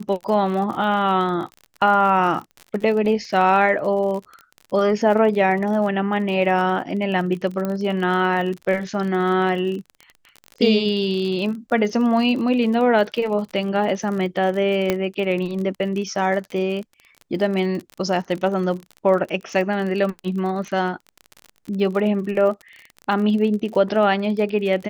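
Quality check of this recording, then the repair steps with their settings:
crackle 39/s -28 dBFS
7.65 pop -13 dBFS
14.9 pop -6 dBFS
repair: de-click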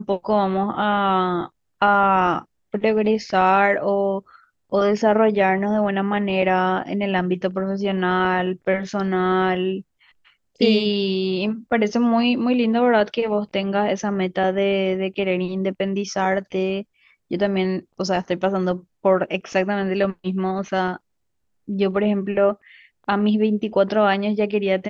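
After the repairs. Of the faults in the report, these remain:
none

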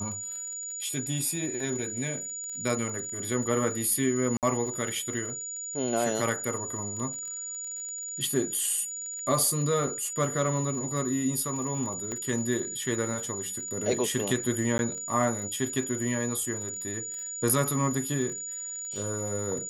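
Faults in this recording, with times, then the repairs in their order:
crackle 29/s -36 dBFS
tone 6900 Hz -34 dBFS
4.37–4.43 gap 58 ms
12.12 pop -21 dBFS
14.78–14.79 gap 11 ms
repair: de-click; notch 6900 Hz, Q 30; interpolate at 4.37, 58 ms; interpolate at 14.78, 11 ms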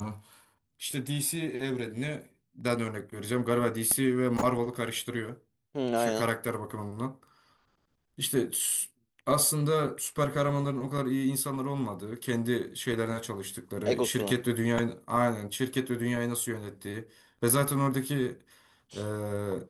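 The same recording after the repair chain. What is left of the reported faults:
none

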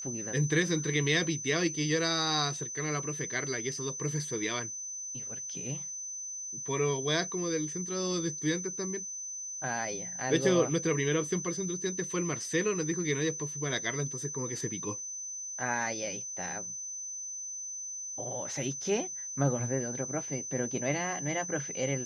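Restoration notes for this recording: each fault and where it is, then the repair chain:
tone 6100 Hz -37 dBFS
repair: notch 6100 Hz, Q 30

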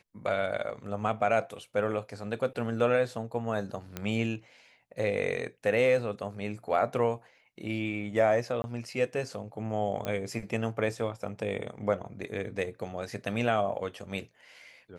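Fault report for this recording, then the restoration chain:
3.97 pop -18 dBFS
8.62–8.64 gap 20 ms
10.05 pop -19 dBFS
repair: de-click; interpolate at 8.62, 20 ms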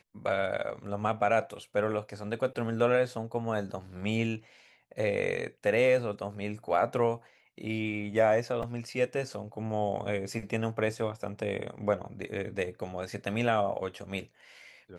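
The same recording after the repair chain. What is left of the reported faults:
none

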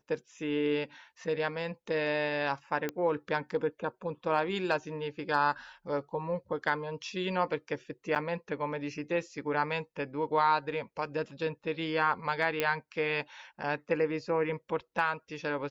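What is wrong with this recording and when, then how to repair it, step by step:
2.89 pop -19 dBFS
8.15–8.16 gap 6.8 ms
12.6 pop -14 dBFS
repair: de-click; interpolate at 8.15, 6.8 ms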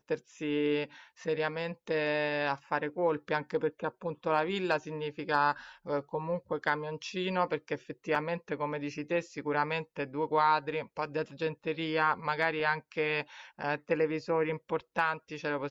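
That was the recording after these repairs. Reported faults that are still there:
none

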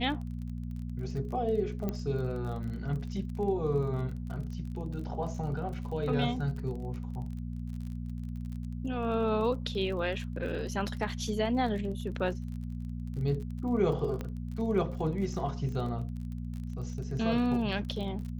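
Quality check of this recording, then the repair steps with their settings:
crackle 30/s -39 dBFS
hum 60 Hz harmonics 4 -37 dBFS
1.89 pop -20 dBFS
14.21 pop -23 dBFS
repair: de-click; de-hum 60 Hz, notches 4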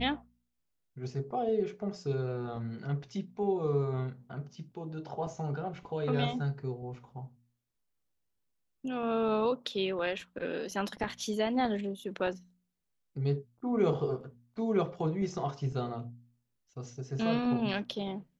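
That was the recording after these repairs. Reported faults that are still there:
14.21 pop

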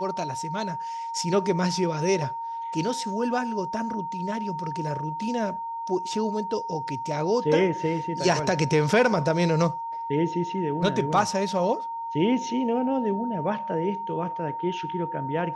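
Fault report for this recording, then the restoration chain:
tone 920 Hz -30 dBFS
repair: notch 920 Hz, Q 30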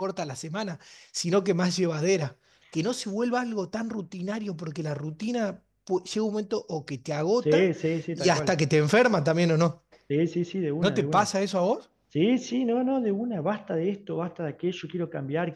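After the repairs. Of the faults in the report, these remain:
none

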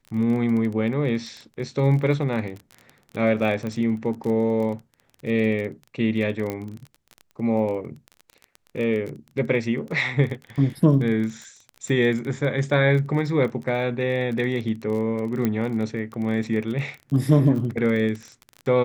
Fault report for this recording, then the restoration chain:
crackle 22/s -30 dBFS
3.67 pop -19 dBFS
6.5 pop -15 dBFS
15.45 pop -11 dBFS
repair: de-click

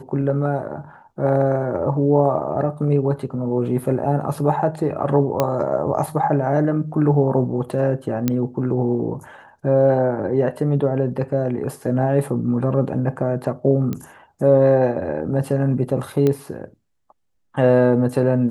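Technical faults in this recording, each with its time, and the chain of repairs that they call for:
5.4 pop -5 dBFS
8.28 pop -6 dBFS
13.93 pop -14 dBFS
16.27 pop -9 dBFS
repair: de-click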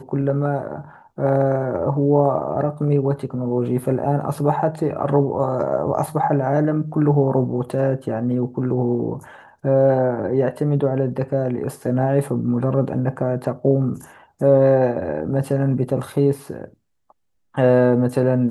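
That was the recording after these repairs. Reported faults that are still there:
none

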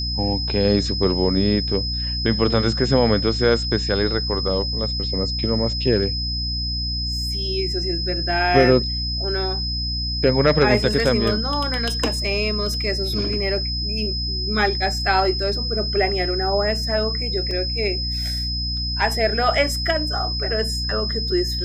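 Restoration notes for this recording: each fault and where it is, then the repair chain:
hum 60 Hz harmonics 5 -27 dBFS
tone 5100 Hz -25 dBFS
17.51 gap 2.1 ms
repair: de-hum 60 Hz, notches 5; notch 5100 Hz, Q 30; interpolate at 17.51, 2.1 ms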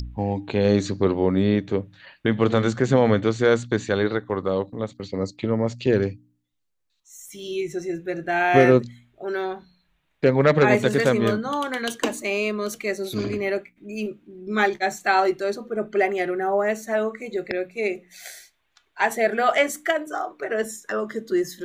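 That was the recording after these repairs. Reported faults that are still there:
none

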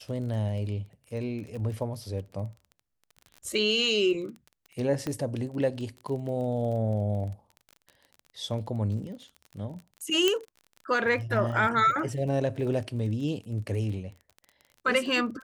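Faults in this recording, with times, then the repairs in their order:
crackle 27/s -37 dBFS
5.07 pop -18 dBFS
10.28 pop -9 dBFS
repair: de-click

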